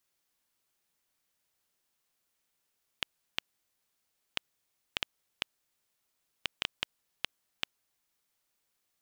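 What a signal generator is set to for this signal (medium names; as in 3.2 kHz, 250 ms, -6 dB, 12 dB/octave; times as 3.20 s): random clicks 2.3 per s -10.5 dBFS 5.04 s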